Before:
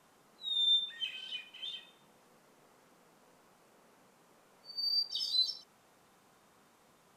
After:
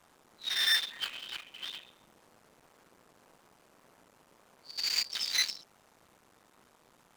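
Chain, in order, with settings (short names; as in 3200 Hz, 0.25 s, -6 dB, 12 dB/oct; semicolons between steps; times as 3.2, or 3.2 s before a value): cycle switcher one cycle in 2, muted; gain +4.5 dB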